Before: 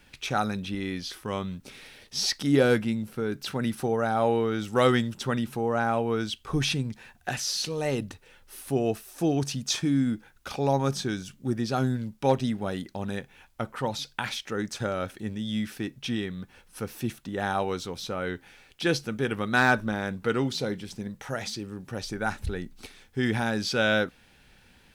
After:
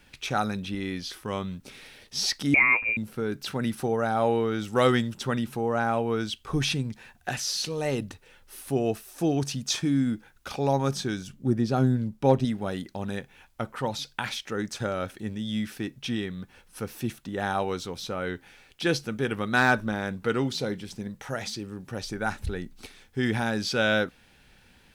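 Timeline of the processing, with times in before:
0:02.54–0:02.97: voice inversion scrambler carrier 2,600 Hz
0:11.27–0:12.45: tilt shelving filter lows +4.5 dB, about 880 Hz

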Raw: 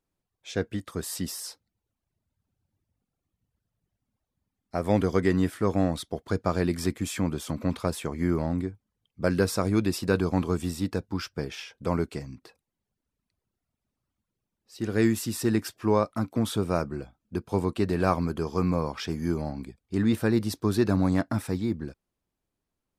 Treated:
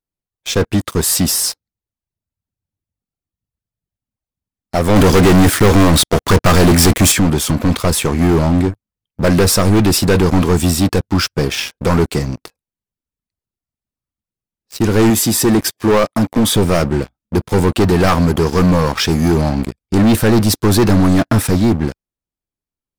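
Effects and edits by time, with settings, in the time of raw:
0:04.96–0:07.12: leveller curve on the samples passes 3
0:15.10–0:16.56: notch comb filter 1,400 Hz
whole clip: high-shelf EQ 5,000 Hz +4.5 dB; leveller curve on the samples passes 5; low-shelf EQ 110 Hz +4.5 dB

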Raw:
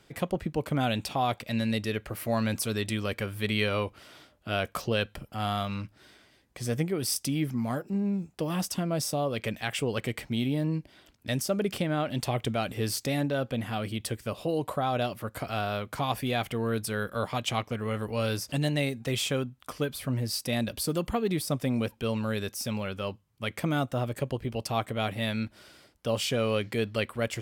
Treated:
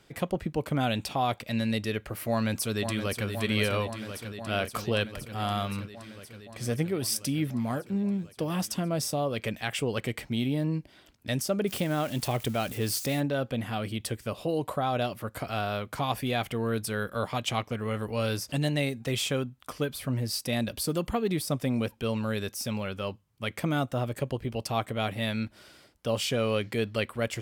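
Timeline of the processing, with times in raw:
0:02.30–0:03.28: delay throw 520 ms, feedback 80%, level −7.5 dB
0:11.67–0:13.20: spike at every zero crossing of −33.5 dBFS

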